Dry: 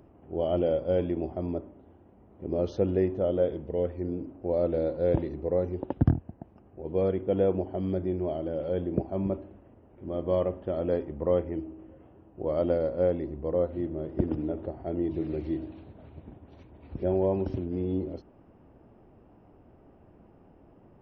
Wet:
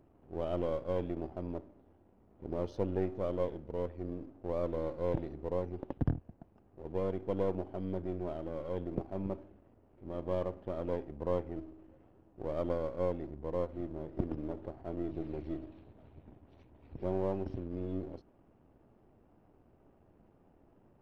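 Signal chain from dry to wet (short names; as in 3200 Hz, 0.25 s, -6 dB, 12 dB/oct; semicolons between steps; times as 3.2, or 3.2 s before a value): half-wave gain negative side -7 dB; gain -6 dB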